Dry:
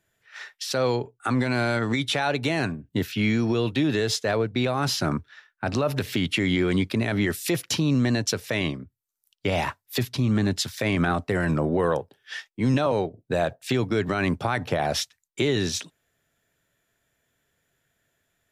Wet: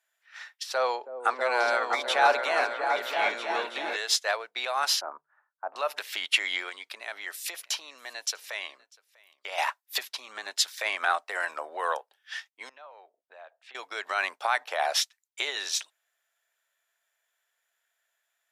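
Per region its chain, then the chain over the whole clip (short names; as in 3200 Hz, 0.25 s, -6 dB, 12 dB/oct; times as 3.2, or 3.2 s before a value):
0.63–3.96 HPF 46 Hz + tilt shelf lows +6 dB, about 1400 Hz + repeats that get brighter 0.324 s, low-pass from 400 Hz, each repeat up 2 oct, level 0 dB
5.01–5.76 LPF 1100 Hz 24 dB/oct + notches 50/100/150 Hz
6.69–9.58 compressor 1.5:1, threshold -32 dBFS + echo 0.646 s -22.5 dB
12.69–13.75 LPF 2600 Hz + compressor 2:1, threshold -48 dBFS
whole clip: HPF 700 Hz 24 dB/oct; upward expander 1.5:1, over -38 dBFS; gain +4.5 dB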